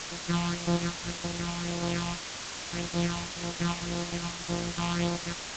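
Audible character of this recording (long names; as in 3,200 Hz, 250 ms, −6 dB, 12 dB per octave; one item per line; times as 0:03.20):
a buzz of ramps at a fixed pitch in blocks of 256 samples
phaser sweep stages 6, 1.8 Hz, lowest notch 430–2,600 Hz
a quantiser's noise floor 6 bits, dither triangular
G.722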